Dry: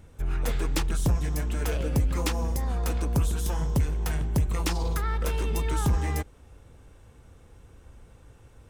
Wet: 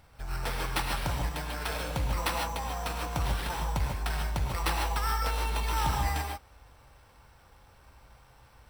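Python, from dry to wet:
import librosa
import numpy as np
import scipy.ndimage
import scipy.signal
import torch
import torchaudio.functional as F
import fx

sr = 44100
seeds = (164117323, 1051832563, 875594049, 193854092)

y = fx.low_shelf_res(x, sr, hz=560.0, db=-9.5, q=1.5)
y = fx.sample_hold(y, sr, seeds[0], rate_hz=6800.0, jitter_pct=0)
y = fx.rev_gated(y, sr, seeds[1], gate_ms=170, shape='rising', drr_db=1.5)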